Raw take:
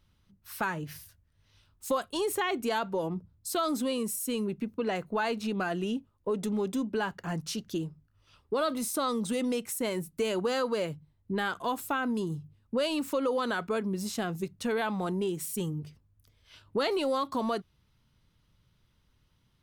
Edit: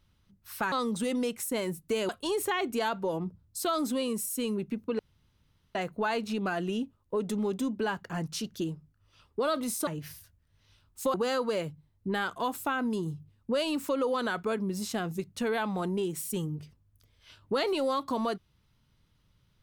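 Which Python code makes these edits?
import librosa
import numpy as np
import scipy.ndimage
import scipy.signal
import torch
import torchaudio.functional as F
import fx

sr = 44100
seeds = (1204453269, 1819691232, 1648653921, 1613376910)

y = fx.edit(x, sr, fx.swap(start_s=0.72, length_s=1.27, other_s=9.01, other_length_s=1.37),
    fx.insert_room_tone(at_s=4.89, length_s=0.76), tone=tone)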